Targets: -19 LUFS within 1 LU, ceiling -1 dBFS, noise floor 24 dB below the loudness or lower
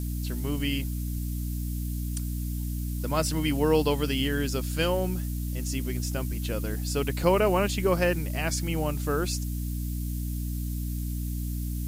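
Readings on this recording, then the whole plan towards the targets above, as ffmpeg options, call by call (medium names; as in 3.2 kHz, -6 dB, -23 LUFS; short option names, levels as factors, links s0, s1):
hum 60 Hz; highest harmonic 300 Hz; hum level -28 dBFS; noise floor -31 dBFS; noise floor target -53 dBFS; loudness -29.0 LUFS; peak level -9.0 dBFS; loudness target -19.0 LUFS
-> -af "bandreject=f=60:t=h:w=6,bandreject=f=120:t=h:w=6,bandreject=f=180:t=h:w=6,bandreject=f=240:t=h:w=6,bandreject=f=300:t=h:w=6"
-af "afftdn=nr=22:nf=-31"
-af "volume=3.16,alimiter=limit=0.891:level=0:latency=1"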